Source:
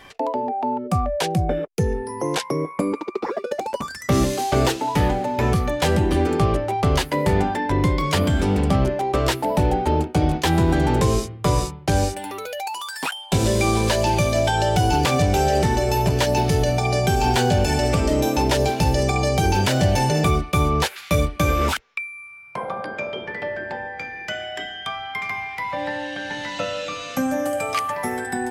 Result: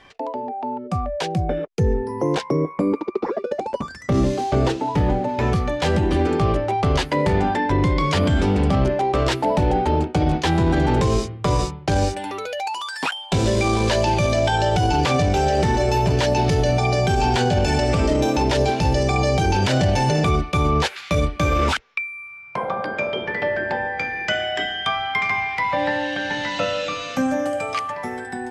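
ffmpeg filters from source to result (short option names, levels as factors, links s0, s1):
-filter_complex "[0:a]asettb=1/sr,asplit=3[s0][s1][s2];[s0]atrim=end=1.804[s3];[s1]atrim=start=1.8:end=5.29,asetpts=PTS-STARTPTS,afade=t=in:d=0.004:c=qsin,afade=t=out:st=3.486:d=0.004:c=qsin,tiltshelf=f=820:g=4.5[s4];[s2]atrim=start=5.286[s5];[s3][s4]acrossfade=d=0.004:c1=hsin:c2=qsin[s6];[s6][s5]acrossfade=d=0.004:c1=qsin:c2=hsin,lowpass=6300,dynaudnorm=f=340:g=9:m=3.76,alimiter=limit=0.447:level=0:latency=1:release=14,volume=0.631"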